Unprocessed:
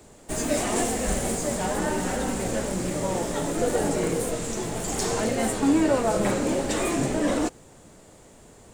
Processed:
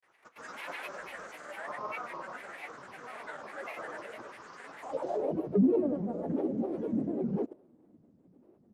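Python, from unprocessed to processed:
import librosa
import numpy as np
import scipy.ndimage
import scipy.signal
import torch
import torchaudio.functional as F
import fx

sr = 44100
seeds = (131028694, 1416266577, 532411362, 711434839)

y = fx.filter_sweep_bandpass(x, sr, from_hz=1500.0, to_hz=250.0, start_s=4.81, end_s=5.34, q=4.0)
y = fx.granulator(y, sr, seeds[0], grain_ms=100.0, per_s=20.0, spray_ms=100.0, spread_st=7)
y = fx.dynamic_eq(y, sr, hz=570.0, q=2.3, threshold_db=-55.0, ratio=4.0, max_db=6)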